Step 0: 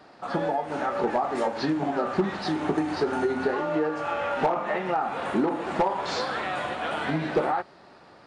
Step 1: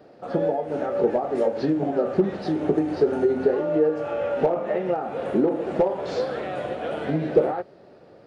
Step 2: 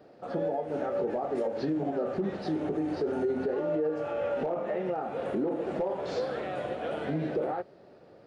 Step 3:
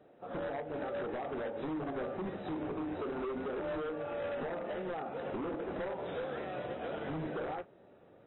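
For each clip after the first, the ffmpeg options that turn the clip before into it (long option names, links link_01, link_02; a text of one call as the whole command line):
ffmpeg -i in.wav -af "equalizer=frequency=125:width_type=o:width=1:gain=4,equalizer=frequency=500:width_type=o:width=1:gain=10,equalizer=frequency=1000:width_type=o:width=1:gain=-10,equalizer=frequency=2000:width_type=o:width=1:gain=-4,equalizer=frequency=4000:width_type=o:width=1:gain=-5,equalizer=frequency=8000:width_type=o:width=1:gain=-8" out.wav
ffmpeg -i in.wav -af "alimiter=limit=-17.5dB:level=0:latency=1:release=49,volume=-4.5dB" out.wav
ffmpeg -i in.wav -af "aeval=exprs='0.0473*(abs(mod(val(0)/0.0473+3,4)-2)-1)':channel_layout=same,volume=-6dB" -ar 24000 -c:a aac -b:a 16k out.aac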